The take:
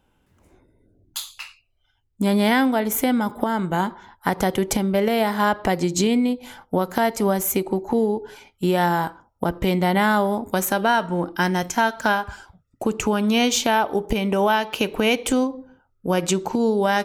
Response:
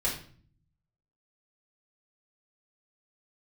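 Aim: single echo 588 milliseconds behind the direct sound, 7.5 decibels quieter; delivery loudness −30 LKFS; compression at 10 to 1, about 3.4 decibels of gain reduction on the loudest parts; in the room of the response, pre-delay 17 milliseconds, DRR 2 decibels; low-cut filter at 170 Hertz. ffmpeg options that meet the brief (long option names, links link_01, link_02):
-filter_complex "[0:a]highpass=170,acompressor=threshold=-21dB:ratio=10,aecho=1:1:588:0.422,asplit=2[link_01][link_02];[1:a]atrim=start_sample=2205,adelay=17[link_03];[link_02][link_03]afir=irnorm=-1:irlink=0,volume=-9.5dB[link_04];[link_01][link_04]amix=inputs=2:normalize=0,volume=-5.5dB"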